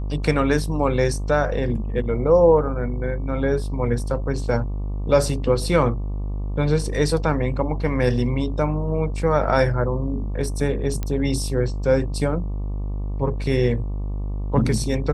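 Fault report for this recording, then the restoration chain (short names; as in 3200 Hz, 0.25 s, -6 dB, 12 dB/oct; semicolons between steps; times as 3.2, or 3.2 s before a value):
buzz 50 Hz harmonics 24 -26 dBFS
11.03 pop -13 dBFS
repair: de-click; de-hum 50 Hz, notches 24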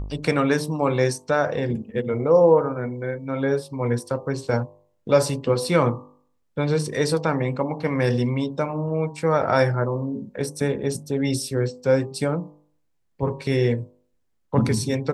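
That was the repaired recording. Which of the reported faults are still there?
none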